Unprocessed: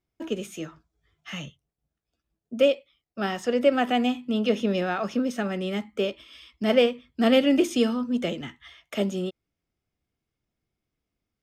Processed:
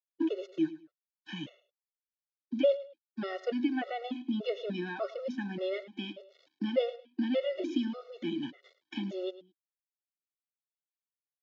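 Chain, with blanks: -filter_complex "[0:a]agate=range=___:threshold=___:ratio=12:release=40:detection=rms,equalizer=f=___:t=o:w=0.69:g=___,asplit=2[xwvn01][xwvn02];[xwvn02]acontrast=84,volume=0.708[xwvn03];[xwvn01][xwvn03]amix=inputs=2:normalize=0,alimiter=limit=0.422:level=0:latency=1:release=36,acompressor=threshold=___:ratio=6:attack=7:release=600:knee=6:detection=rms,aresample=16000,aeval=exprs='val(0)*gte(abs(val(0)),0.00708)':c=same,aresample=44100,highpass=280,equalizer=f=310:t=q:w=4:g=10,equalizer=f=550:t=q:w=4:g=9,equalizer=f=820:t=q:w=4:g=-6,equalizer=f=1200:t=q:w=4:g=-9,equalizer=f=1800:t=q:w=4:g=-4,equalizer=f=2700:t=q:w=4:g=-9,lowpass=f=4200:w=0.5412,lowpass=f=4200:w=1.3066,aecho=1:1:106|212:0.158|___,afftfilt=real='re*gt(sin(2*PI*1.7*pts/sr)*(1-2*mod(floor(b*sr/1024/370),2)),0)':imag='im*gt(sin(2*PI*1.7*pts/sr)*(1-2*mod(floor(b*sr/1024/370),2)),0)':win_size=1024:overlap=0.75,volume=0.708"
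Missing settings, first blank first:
0.398, 0.01, 480, -11, 0.0891, 0.038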